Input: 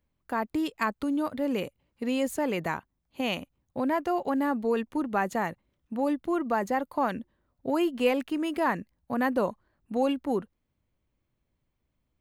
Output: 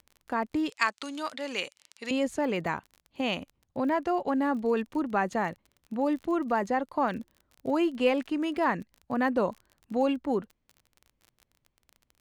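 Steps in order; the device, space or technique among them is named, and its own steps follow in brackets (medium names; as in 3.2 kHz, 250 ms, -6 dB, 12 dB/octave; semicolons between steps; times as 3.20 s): lo-fi chain (low-pass 6.8 kHz 12 dB/octave; wow and flutter 27 cents; crackle 29 per s -39 dBFS); 0.70–2.11 s: frequency weighting ITU-R 468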